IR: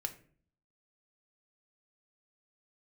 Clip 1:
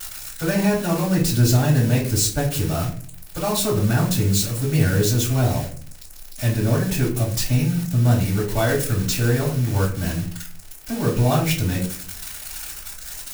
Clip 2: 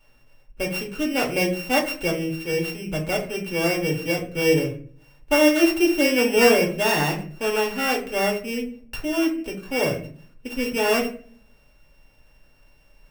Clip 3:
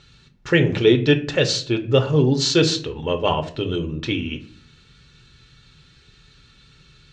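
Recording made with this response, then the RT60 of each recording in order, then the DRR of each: 3; 0.45, 0.50, 0.50 seconds; −11.5, −2.0, 5.0 decibels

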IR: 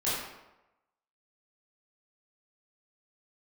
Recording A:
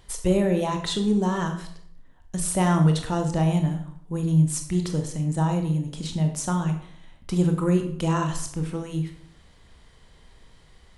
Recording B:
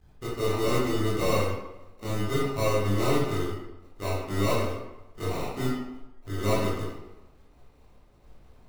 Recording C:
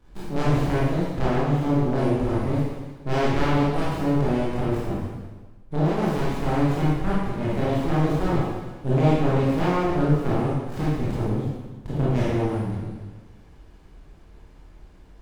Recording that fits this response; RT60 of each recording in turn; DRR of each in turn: B; 0.65, 0.95, 1.3 seconds; 4.5, −11.0, −9.0 decibels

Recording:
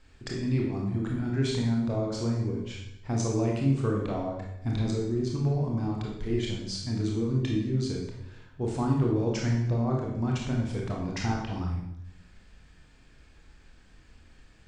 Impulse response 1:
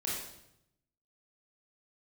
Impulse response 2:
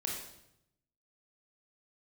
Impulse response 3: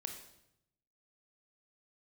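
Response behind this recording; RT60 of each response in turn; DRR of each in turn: 2; 0.80, 0.80, 0.80 seconds; −6.0, −2.0, 4.0 decibels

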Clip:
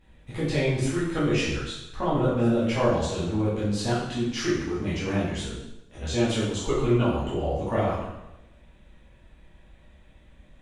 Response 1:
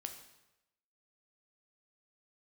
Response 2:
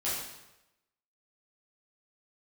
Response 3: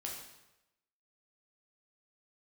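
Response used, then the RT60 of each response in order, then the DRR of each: 2; 0.95, 0.95, 0.95 seconds; 5.0, −10.0, −2.0 decibels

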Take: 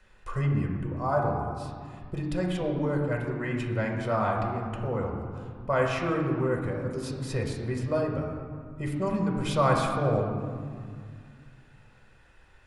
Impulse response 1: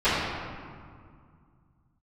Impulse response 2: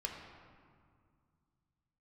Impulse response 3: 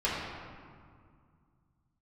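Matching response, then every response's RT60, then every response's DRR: 2; 2.1, 2.1, 2.1 seconds; −19.0, 0.0, −9.5 decibels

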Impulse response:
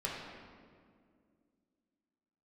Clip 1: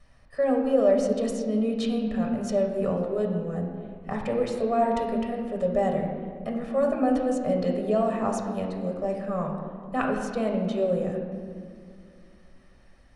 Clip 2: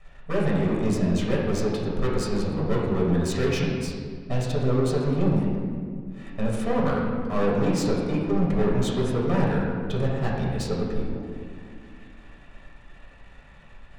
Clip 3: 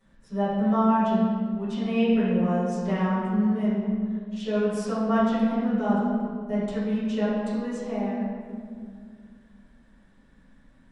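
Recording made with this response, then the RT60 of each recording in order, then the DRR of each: 2; 2.1, 2.1, 2.1 seconds; 0.5, −5.0, −15.0 decibels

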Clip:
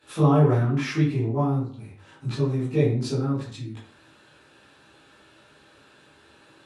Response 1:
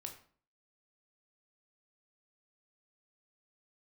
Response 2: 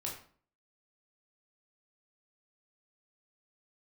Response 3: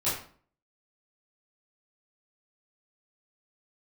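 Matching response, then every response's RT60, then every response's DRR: 3; 0.50, 0.50, 0.50 seconds; 3.0, −3.0, −12.5 decibels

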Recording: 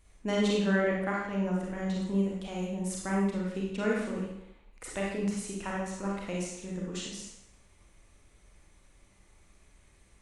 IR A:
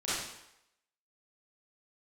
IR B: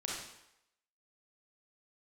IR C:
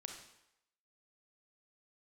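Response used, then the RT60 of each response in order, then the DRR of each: B; 0.85, 0.85, 0.85 seconds; −12.0, −4.0, 3.0 decibels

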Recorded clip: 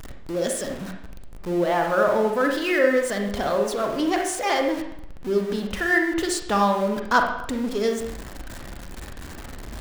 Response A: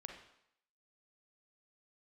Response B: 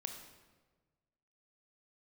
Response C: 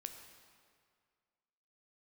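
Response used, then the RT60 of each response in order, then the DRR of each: A; 0.75, 1.4, 2.0 seconds; 2.5, 4.5, 5.5 decibels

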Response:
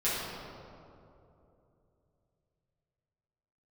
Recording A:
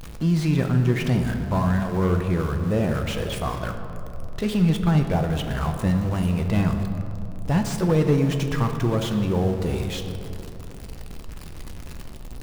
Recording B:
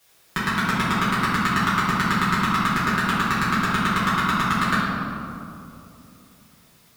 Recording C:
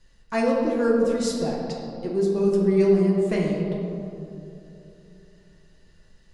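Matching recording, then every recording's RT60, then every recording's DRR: B; 3.0, 2.9, 2.9 seconds; 4.5, −12.0, −3.5 decibels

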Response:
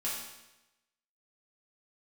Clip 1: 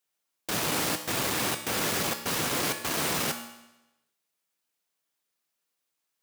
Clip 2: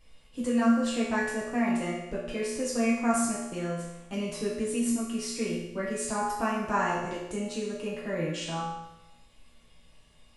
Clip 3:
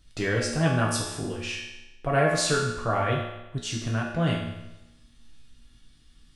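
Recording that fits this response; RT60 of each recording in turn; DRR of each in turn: 2; 0.95, 0.95, 0.95 seconds; 5.0, −7.5, −3.5 decibels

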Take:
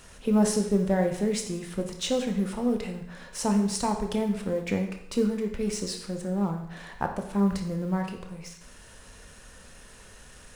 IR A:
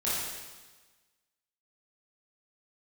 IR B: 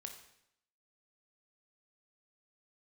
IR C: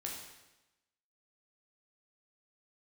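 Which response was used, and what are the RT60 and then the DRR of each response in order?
B; 1.3, 0.75, 1.0 seconds; −10.0, 4.0, −2.0 decibels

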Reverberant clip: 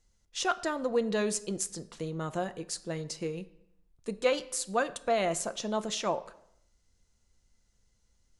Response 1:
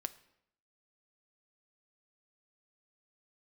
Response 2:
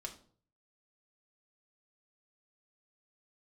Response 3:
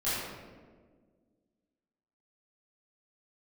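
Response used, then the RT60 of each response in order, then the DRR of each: 1; 0.75, 0.50, 1.6 seconds; 10.5, 1.0, −13.5 decibels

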